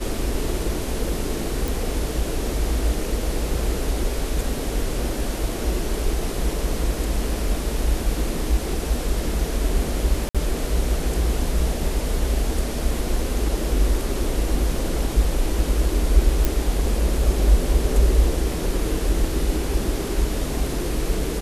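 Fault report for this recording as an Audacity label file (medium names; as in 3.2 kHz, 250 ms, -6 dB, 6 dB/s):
1.680000	1.680000	pop
10.290000	10.350000	dropout 56 ms
16.450000	16.450000	pop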